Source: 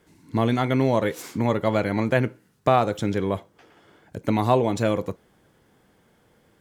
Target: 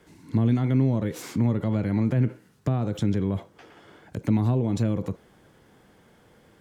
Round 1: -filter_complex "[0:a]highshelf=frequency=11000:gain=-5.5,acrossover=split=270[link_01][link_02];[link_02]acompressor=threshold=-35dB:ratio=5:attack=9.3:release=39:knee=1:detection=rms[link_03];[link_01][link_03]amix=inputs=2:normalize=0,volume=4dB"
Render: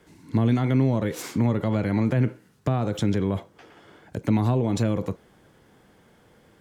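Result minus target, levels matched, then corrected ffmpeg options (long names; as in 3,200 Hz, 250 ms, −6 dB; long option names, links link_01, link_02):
downward compressor: peak gain reduction −5.5 dB
-filter_complex "[0:a]highshelf=frequency=11000:gain=-5.5,acrossover=split=270[link_01][link_02];[link_02]acompressor=threshold=-42dB:ratio=5:attack=9.3:release=39:knee=1:detection=rms[link_03];[link_01][link_03]amix=inputs=2:normalize=0,volume=4dB"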